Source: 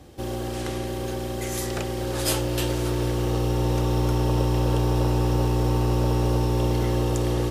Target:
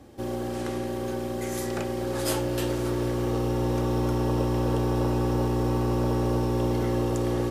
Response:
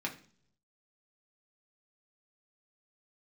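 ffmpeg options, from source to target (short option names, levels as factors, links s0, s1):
-filter_complex "[0:a]asplit=2[s0][s1];[1:a]atrim=start_sample=2205,lowpass=2300[s2];[s1][s2]afir=irnorm=-1:irlink=0,volume=0.562[s3];[s0][s3]amix=inputs=2:normalize=0,volume=0.562"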